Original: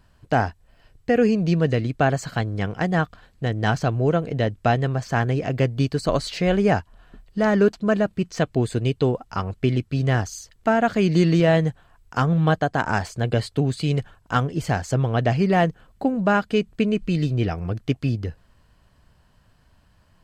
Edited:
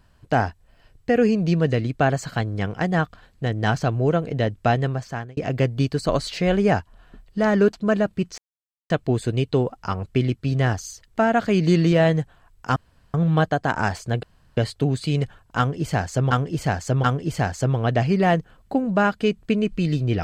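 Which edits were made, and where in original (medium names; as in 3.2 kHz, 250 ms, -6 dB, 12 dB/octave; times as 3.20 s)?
4.85–5.37 s: fade out
8.38 s: insert silence 0.52 s
12.24 s: insert room tone 0.38 s
13.33 s: insert room tone 0.34 s
14.34–15.07 s: loop, 3 plays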